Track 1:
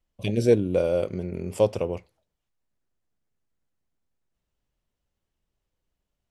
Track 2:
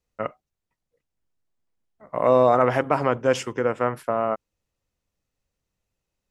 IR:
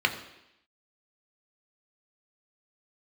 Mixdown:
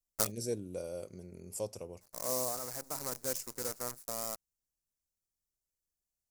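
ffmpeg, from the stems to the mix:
-filter_complex "[0:a]volume=0.133,asplit=2[s0][s1];[1:a]bass=f=250:g=1,treble=f=4000:g=-3,acrusher=bits=5:dc=4:mix=0:aa=0.000001,volume=0.398,afade=t=out:st=2.33:d=0.28:silence=0.281838[s2];[s1]apad=whole_len=277918[s3];[s2][s3]sidechaincompress=threshold=0.002:ratio=12:attack=49:release=1120[s4];[s0][s4]amix=inputs=2:normalize=0,highshelf=f=4300:g=-5,aexciter=amount=8.3:drive=7.9:freq=4800"

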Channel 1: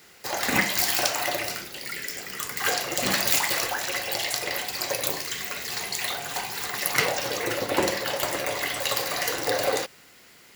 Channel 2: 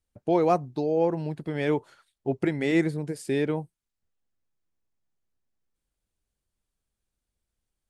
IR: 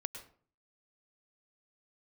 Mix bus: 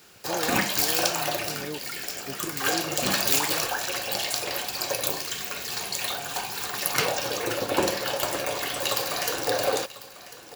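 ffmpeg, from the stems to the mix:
-filter_complex "[0:a]volume=1,asplit=2[s0][s1];[s1]volume=0.141[s2];[1:a]volume=0.282[s3];[s2]aecho=0:1:1046:1[s4];[s0][s3][s4]amix=inputs=3:normalize=0,bandreject=f=2000:w=6.4"

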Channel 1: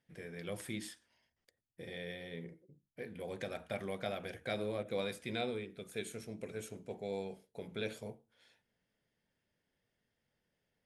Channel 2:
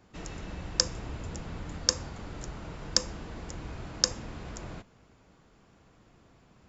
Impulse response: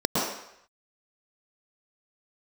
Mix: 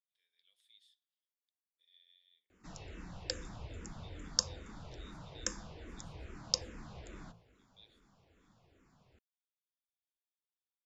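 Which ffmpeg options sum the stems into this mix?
-filter_complex "[0:a]bandpass=f=3600:t=q:w=9.6:csg=0,aemphasis=mode=production:type=bsi,volume=0.211[s0];[1:a]bandreject=f=55.98:t=h:w=4,bandreject=f=111.96:t=h:w=4,bandreject=f=167.94:t=h:w=4,bandreject=f=223.92:t=h:w=4,bandreject=f=279.9:t=h:w=4,bandreject=f=335.88:t=h:w=4,bandreject=f=391.86:t=h:w=4,bandreject=f=447.84:t=h:w=4,bandreject=f=503.82:t=h:w=4,bandreject=f=559.8:t=h:w=4,bandreject=f=615.78:t=h:w=4,bandreject=f=671.76:t=h:w=4,bandreject=f=727.74:t=h:w=4,bandreject=f=783.72:t=h:w=4,bandreject=f=839.7:t=h:w=4,bandreject=f=895.68:t=h:w=4,bandreject=f=951.66:t=h:w=4,bandreject=f=1007.64:t=h:w=4,bandreject=f=1063.62:t=h:w=4,bandreject=f=1119.6:t=h:w=4,bandreject=f=1175.58:t=h:w=4,bandreject=f=1231.56:t=h:w=4,bandreject=f=1287.54:t=h:w=4,bandreject=f=1343.52:t=h:w=4,bandreject=f=1399.5:t=h:w=4,bandreject=f=1455.48:t=h:w=4,bandreject=f=1511.46:t=h:w=4,bandreject=f=1567.44:t=h:w=4,bandreject=f=1623.42:t=h:w=4,bandreject=f=1679.4:t=h:w=4,bandreject=f=1735.38:t=h:w=4,bandreject=f=1791.36:t=h:w=4,bandreject=f=1847.34:t=h:w=4,asplit=2[s1][s2];[s2]afreqshift=-2.4[s3];[s1][s3]amix=inputs=2:normalize=1,adelay=2500,volume=0.562[s4];[s0][s4]amix=inputs=2:normalize=0"

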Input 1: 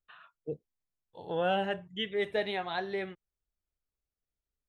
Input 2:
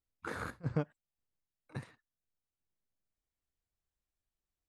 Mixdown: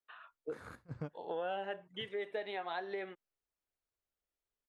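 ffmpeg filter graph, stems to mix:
-filter_complex "[0:a]acompressor=threshold=0.0158:ratio=6,highpass=360,highshelf=f=3700:g=-11.5,volume=1.26,asplit=2[s0][s1];[1:a]adelay=250,volume=0.355[s2];[s1]apad=whole_len=217423[s3];[s2][s3]sidechaincompress=threshold=0.00794:ratio=3:attack=16:release=390[s4];[s0][s4]amix=inputs=2:normalize=0"

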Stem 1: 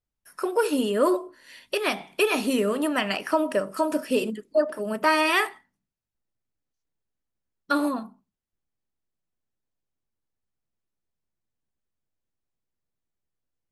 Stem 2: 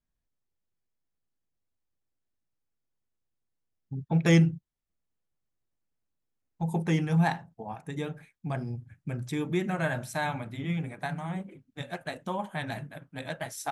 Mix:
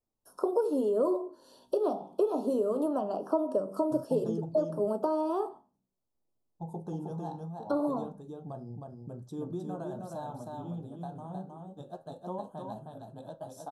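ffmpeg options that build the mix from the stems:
-filter_complex "[0:a]acrossover=split=350|1100[s0][s1][s2];[s0]acompressor=threshold=0.00891:ratio=4[s3];[s1]acompressor=threshold=0.0178:ratio=4[s4];[s2]acompressor=threshold=0.00316:ratio=4[s5];[s3][s4][s5]amix=inputs=3:normalize=0,bandreject=f=50:t=h:w=6,bandreject=f=100:t=h:w=6,bandreject=f=150:t=h:w=6,bandreject=f=200:t=h:w=6,volume=0.944[s6];[1:a]alimiter=limit=0.0794:level=0:latency=1:release=149,volume=0.299,asplit=2[s7][s8];[s8]volume=0.668,aecho=0:1:313:1[s9];[s6][s7][s9]amix=inputs=3:normalize=0,equalizer=f=510:w=0.3:g=11,flanger=delay=8.9:depth=8.2:regen=74:speed=0.23:shape=sinusoidal,asuperstop=centerf=2100:order=4:qfactor=0.73"

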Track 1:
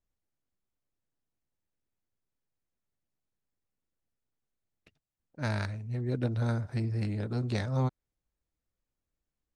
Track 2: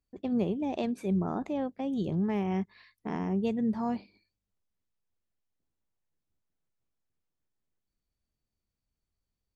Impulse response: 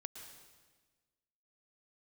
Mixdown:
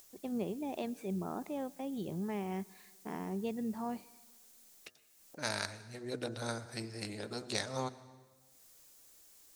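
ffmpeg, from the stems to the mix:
-filter_complex "[0:a]bass=f=250:g=-9,treble=f=4000:g=14,bandreject=f=123.8:t=h:w=4,bandreject=f=247.6:t=h:w=4,bandreject=f=371.4:t=h:w=4,bandreject=f=495.2:t=h:w=4,bandreject=f=619:t=h:w=4,bandreject=f=742.8:t=h:w=4,bandreject=f=866.6:t=h:w=4,bandreject=f=990.4:t=h:w=4,bandreject=f=1114.2:t=h:w=4,bandreject=f=1238:t=h:w=4,bandreject=f=1361.8:t=h:w=4,bandreject=f=1485.6:t=h:w=4,bandreject=f=1609.4:t=h:w=4,bandreject=f=1733.2:t=h:w=4,acompressor=mode=upward:threshold=0.01:ratio=2.5,volume=0.668,asplit=2[s0][s1];[s1]volume=0.562[s2];[1:a]volume=0.473,asplit=2[s3][s4];[s4]volume=0.251[s5];[2:a]atrim=start_sample=2205[s6];[s2][s5]amix=inputs=2:normalize=0[s7];[s7][s6]afir=irnorm=-1:irlink=0[s8];[s0][s3][s8]amix=inputs=3:normalize=0,lowshelf=f=150:g=-10.5"

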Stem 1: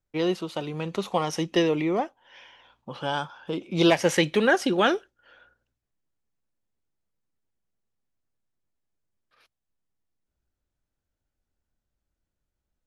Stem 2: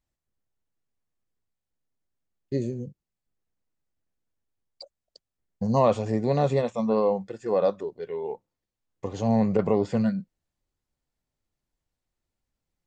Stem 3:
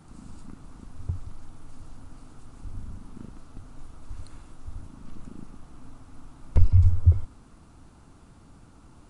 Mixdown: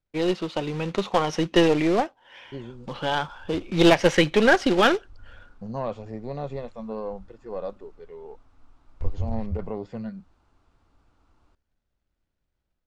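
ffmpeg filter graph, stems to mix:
-filter_complex "[0:a]acrusher=bits=3:mode=log:mix=0:aa=0.000001,volume=0.944[s0];[1:a]volume=0.2[s1];[2:a]equalizer=f=170:w=0.96:g=-12,adelay=2450,volume=0.237[s2];[s0][s1][s2]amix=inputs=3:normalize=0,lowpass=4600,dynaudnorm=f=120:g=5:m=1.58,aeval=exprs='0.631*(cos(1*acos(clip(val(0)/0.631,-1,1)))-cos(1*PI/2))+0.0501*(cos(6*acos(clip(val(0)/0.631,-1,1)))-cos(6*PI/2))':c=same"

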